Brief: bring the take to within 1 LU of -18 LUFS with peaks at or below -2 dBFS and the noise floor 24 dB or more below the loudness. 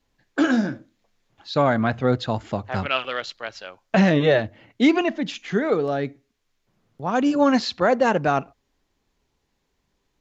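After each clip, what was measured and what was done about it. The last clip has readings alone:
loudness -22.0 LUFS; peak level -7.0 dBFS; loudness target -18.0 LUFS
-> trim +4 dB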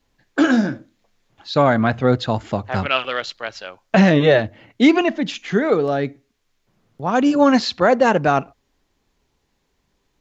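loudness -18.0 LUFS; peak level -3.0 dBFS; noise floor -69 dBFS

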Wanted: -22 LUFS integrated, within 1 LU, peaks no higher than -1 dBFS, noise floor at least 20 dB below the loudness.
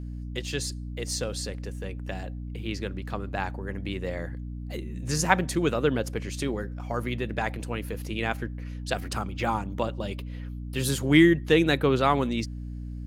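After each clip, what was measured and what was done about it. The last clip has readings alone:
hum 60 Hz; highest harmonic 300 Hz; hum level -33 dBFS; loudness -28.0 LUFS; peak level -3.5 dBFS; loudness target -22.0 LUFS
-> de-hum 60 Hz, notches 5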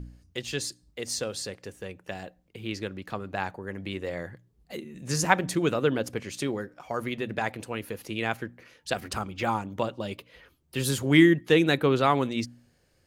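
hum not found; loudness -28.0 LUFS; peak level -3.5 dBFS; loudness target -22.0 LUFS
-> trim +6 dB; peak limiter -1 dBFS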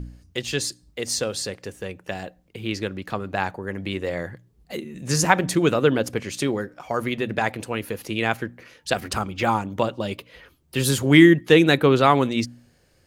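loudness -22.0 LUFS; peak level -1.0 dBFS; noise floor -61 dBFS

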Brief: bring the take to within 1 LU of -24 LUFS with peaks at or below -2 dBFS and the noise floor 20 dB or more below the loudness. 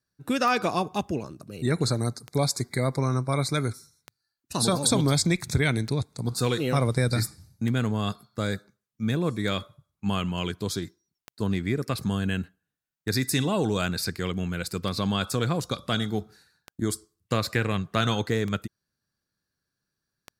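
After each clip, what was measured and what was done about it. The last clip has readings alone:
clicks found 12; loudness -27.5 LUFS; peak level -8.0 dBFS; loudness target -24.0 LUFS
-> de-click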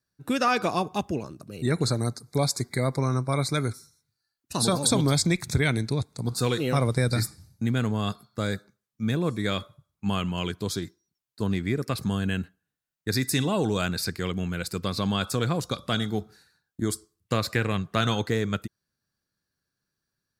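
clicks found 0; loudness -27.5 LUFS; peak level -8.0 dBFS; loudness target -24.0 LUFS
-> trim +3.5 dB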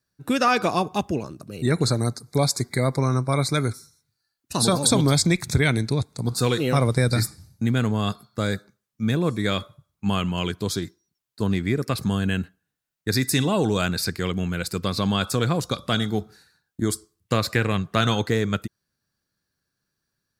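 loudness -24.0 LUFS; peak level -4.5 dBFS; noise floor -81 dBFS

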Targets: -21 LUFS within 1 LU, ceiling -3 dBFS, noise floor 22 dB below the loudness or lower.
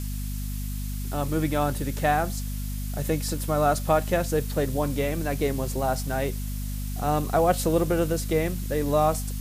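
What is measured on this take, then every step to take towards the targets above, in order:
hum 50 Hz; highest harmonic 250 Hz; hum level -28 dBFS; noise floor -31 dBFS; noise floor target -49 dBFS; loudness -26.5 LUFS; peak level -9.0 dBFS; loudness target -21.0 LUFS
-> hum notches 50/100/150/200/250 Hz; noise reduction 18 dB, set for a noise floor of -31 dBFS; trim +5.5 dB

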